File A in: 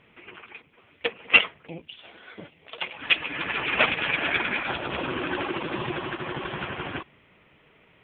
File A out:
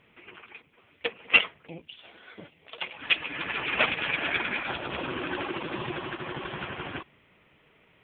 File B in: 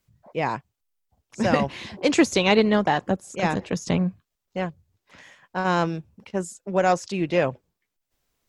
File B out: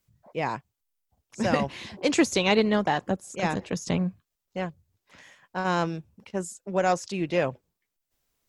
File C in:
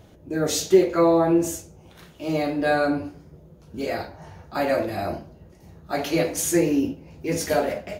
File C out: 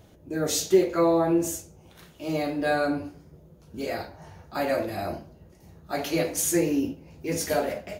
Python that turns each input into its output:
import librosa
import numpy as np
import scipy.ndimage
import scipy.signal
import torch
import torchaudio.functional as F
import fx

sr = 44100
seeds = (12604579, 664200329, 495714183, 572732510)

y = fx.high_shelf(x, sr, hz=6300.0, db=5.0)
y = y * 10.0 ** (-3.5 / 20.0)